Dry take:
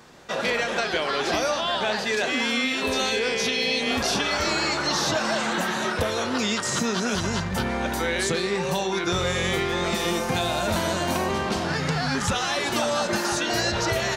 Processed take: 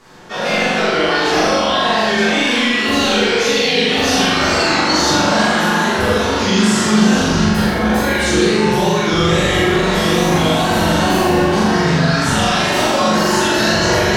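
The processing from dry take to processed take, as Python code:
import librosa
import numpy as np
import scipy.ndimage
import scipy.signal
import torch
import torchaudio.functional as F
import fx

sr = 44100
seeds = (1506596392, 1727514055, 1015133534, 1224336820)

y = fx.wow_flutter(x, sr, seeds[0], rate_hz=2.1, depth_cents=140.0)
y = fx.room_flutter(y, sr, wall_m=7.2, rt60_s=0.88)
y = fx.room_shoebox(y, sr, seeds[1], volume_m3=270.0, walls='mixed', distance_m=3.3)
y = y * librosa.db_to_amplitude(-3.5)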